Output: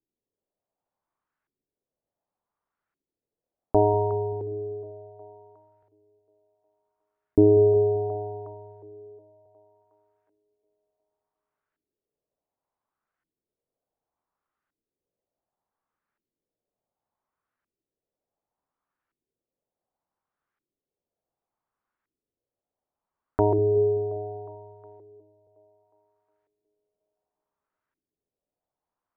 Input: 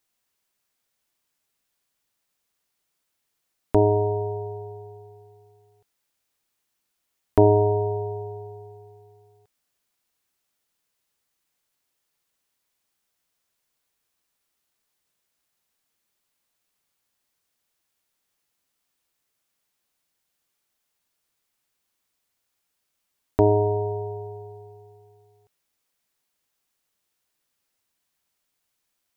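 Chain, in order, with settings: two-band feedback delay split 370 Hz, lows 193 ms, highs 362 ms, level -12.5 dB; LFO low-pass saw up 0.68 Hz 320–1600 Hz; trim -4.5 dB

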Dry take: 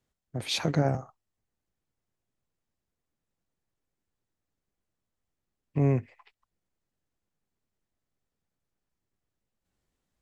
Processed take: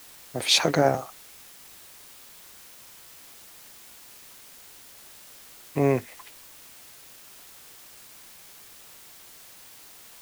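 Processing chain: tone controls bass -14 dB, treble +3 dB; in parallel at -6 dB: word length cut 8-bit, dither triangular; on the sum: trim +5.5 dB

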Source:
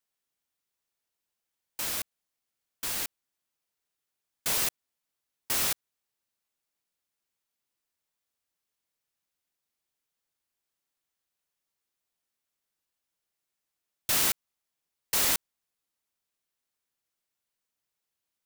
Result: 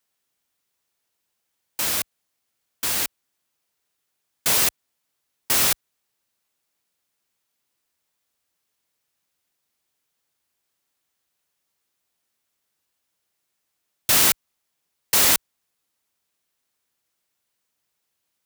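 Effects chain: high-pass 43 Hz; trim +8.5 dB

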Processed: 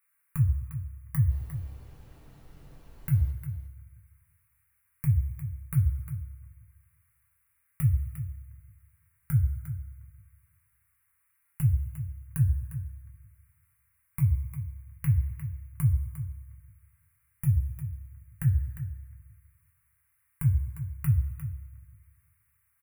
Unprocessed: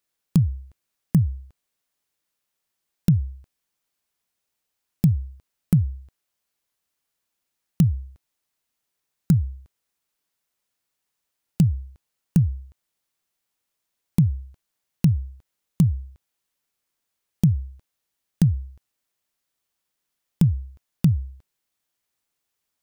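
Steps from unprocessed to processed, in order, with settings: peak limiter -16 dBFS, peak gain reduction 9 dB; FFT filter 100 Hz 0 dB, 240 Hz -28 dB, 410 Hz -17 dB, 710 Hz -17 dB, 1.1 kHz +4 dB, 2.2 kHz +9 dB, 3.4 kHz -23 dB, 5.2 kHz -27 dB, 10 kHz +6 dB; 1.29–3.30 s: added noise brown -51 dBFS; delay 353 ms -11.5 dB; two-slope reverb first 0.21 s, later 1.7 s, from -18 dB, DRR -0.5 dB

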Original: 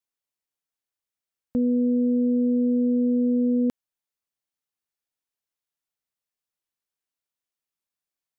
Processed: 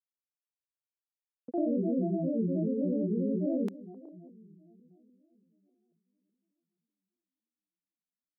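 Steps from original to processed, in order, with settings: high-pass 260 Hz 24 dB/octave; expander -35 dBFS; bucket-brigade echo 288 ms, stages 1024, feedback 62%, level -15 dB; granulator 124 ms, grains 28 per s, pitch spread up and down by 7 st

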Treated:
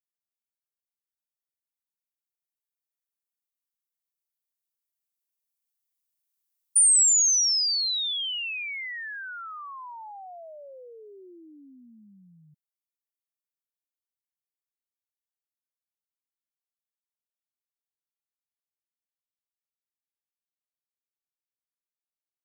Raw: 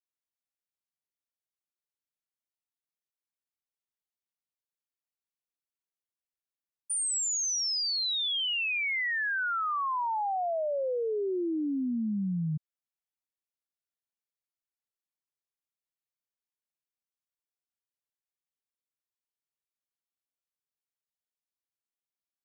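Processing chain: Doppler pass-by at 6.81 s, 8 m/s, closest 7.6 m; RIAA curve recording

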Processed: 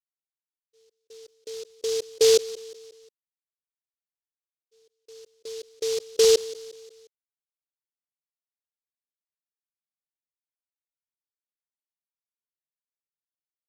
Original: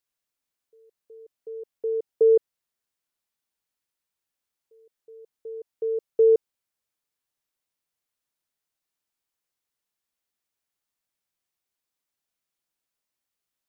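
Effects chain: expander -51 dBFS; feedback delay 178 ms, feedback 49%, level -18 dB; delay time shaken by noise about 4.7 kHz, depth 0.13 ms

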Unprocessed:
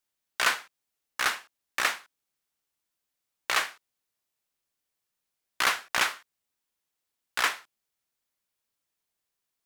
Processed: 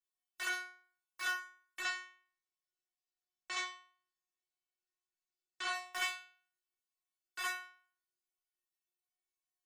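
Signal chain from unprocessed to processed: block-companded coder 5-bit; spectral gate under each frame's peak -30 dB strong; 1.80–5.73 s: steep low-pass 8 kHz 36 dB/octave; inharmonic resonator 360 Hz, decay 0.5 s, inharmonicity 0.002; trim +5.5 dB

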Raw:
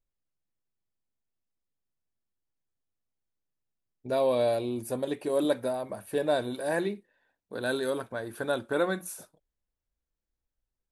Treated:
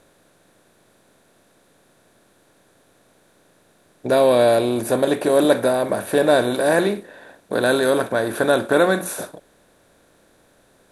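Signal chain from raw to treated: spectral levelling over time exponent 0.6; trim +8.5 dB

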